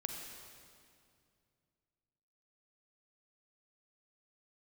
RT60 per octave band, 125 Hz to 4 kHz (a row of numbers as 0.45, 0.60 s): 3.2, 2.8, 2.5, 2.2, 2.0, 2.0 s